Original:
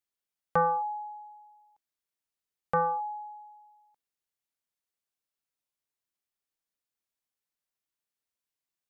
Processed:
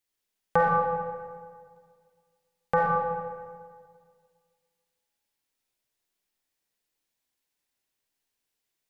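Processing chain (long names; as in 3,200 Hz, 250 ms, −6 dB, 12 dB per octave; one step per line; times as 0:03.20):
thirty-one-band graphic EQ 160 Hz −4 dB, 630 Hz −4 dB, 1,250 Hz −7 dB
comb and all-pass reverb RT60 1.9 s, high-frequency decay 0.65×, pre-delay 10 ms, DRR −2.5 dB
level +5 dB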